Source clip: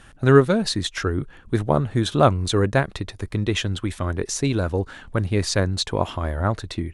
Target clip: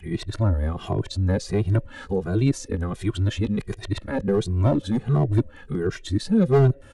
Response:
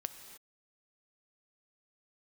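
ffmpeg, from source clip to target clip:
-filter_complex "[0:a]areverse,acrossover=split=460[link_01][link_02];[link_02]acompressor=threshold=-36dB:ratio=6[link_03];[link_01][link_03]amix=inputs=2:normalize=0,volume=15dB,asoftclip=hard,volume=-15dB,asplit=2[link_04][link_05];[link_05]asplit=3[link_06][link_07][link_08];[link_06]bandpass=frequency=530:width_type=q:width=8,volume=0dB[link_09];[link_07]bandpass=frequency=1840:width_type=q:width=8,volume=-6dB[link_10];[link_08]bandpass=frequency=2480:width_type=q:width=8,volume=-9dB[link_11];[link_09][link_10][link_11]amix=inputs=3:normalize=0[link_12];[1:a]atrim=start_sample=2205,adelay=21[link_13];[link_12][link_13]afir=irnorm=-1:irlink=0,volume=-10dB[link_14];[link_04][link_14]amix=inputs=2:normalize=0,asplit=2[link_15][link_16];[link_16]adelay=2,afreqshift=-1.4[link_17];[link_15][link_17]amix=inputs=2:normalize=1,volume=4.5dB"

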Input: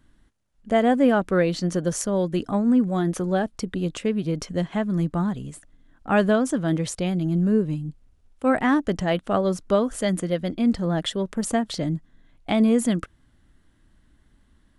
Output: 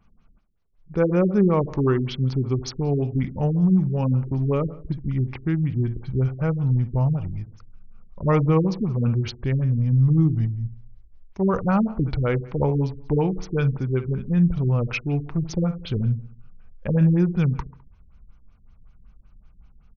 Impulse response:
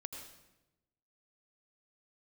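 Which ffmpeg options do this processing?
-filter_complex "[0:a]asetrate=32667,aresample=44100,asubboost=boost=2.5:cutoff=130,asplit=2[link_01][link_02];[link_02]adelay=69,lowpass=frequency=3100:poles=1,volume=-13dB,asplit=2[link_03][link_04];[link_04]adelay=69,lowpass=frequency=3100:poles=1,volume=0.48,asplit=2[link_05][link_06];[link_06]adelay=69,lowpass=frequency=3100:poles=1,volume=0.48,asplit=2[link_07][link_08];[link_08]adelay=69,lowpass=frequency=3100:poles=1,volume=0.48,asplit=2[link_09][link_10];[link_10]adelay=69,lowpass=frequency=3100:poles=1,volume=0.48[link_11];[link_03][link_05][link_07][link_09][link_11]amix=inputs=5:normalize=0[link_12];[link_01][link_12]amix=inputs=2:normalize=0,afftfilt=real='re*lt(b*sr/1024,390*pow(6800/390,0.5+0.5*sin(2*PI*5.3*pts/sr)))':imag='im*lt(b*sr/1024,390*pow(6800/390,0.5+0.5*sin(2*PI*5.3*pts/sr)))':win_size=1024:overlap=0.75"

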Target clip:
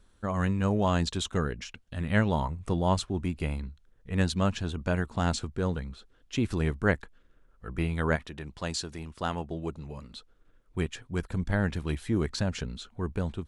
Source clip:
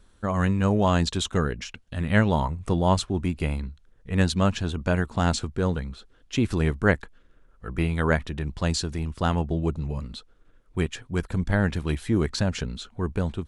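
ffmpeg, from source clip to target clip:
ffmpeg -i in.wav -filter_complex "[0:a]asettb=1/sr,asplit=3[link_01][link_02][link_03];[link_01]atrim=end=8.164[link_04];[link_02]atrim=start=8.16:end=10.16,asetpts=PTS-STARTPTS,afade=type=in:duration=0.004:curve=qsin,afade=type=out:start_time=1.996:duration=0.004:curve=qsin,lowshelf=frequency=200:gain=-10[link_05];[link_03]atrim=start=10.156[link_06];[link_04][link_05]acrossfade=duration=0.004:curve1=hsin:curve2=qsin[link_07];[link_07][link_06]acrossfade=duration=0.004:curve1=qsin:curve2=hsin,volume=-4.5dB" out.wav

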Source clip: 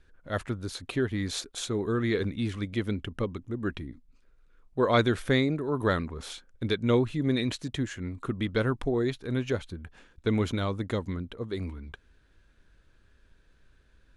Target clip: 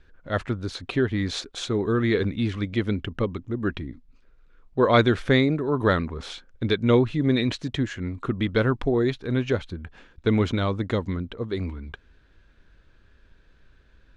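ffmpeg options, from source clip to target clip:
ffmpeg -i in.wav -af "lowpass=5100,volume=5dB" out.wav

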